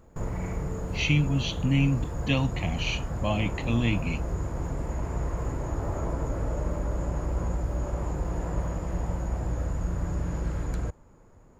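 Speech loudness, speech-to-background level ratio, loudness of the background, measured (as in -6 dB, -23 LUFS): -27.5 LUFS, 5.0 dB, -32.5 LUFS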